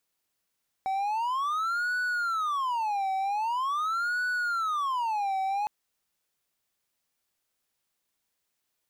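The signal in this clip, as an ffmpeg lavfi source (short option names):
-f lavfi -i "aevalsrc='0.0631*(1-4*abs(mod((1123*t-357/(2*PI*0.44)*sin(2*PI*0.44*t))+0.25,1)-0.5))':d=4.81:s=44100"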